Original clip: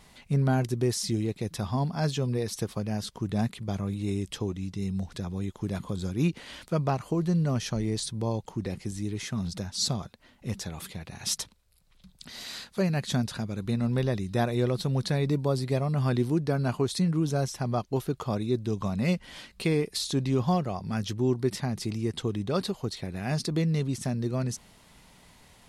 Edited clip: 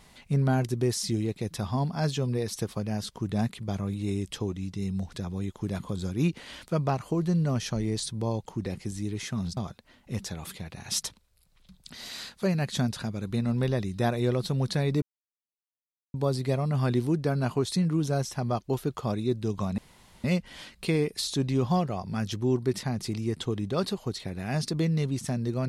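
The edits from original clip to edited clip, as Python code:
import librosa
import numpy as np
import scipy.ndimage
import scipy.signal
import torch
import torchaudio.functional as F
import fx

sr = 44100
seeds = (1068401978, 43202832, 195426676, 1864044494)

y = fx.edit(x, sr, fx.cut(start_s=9.57, length_s=0.35),
    fx.insert_silence(at_s=15.37, length_s=1.12),
    fx.insert_room_tone(at_s=19.01, length_s=0.46), tone=tone)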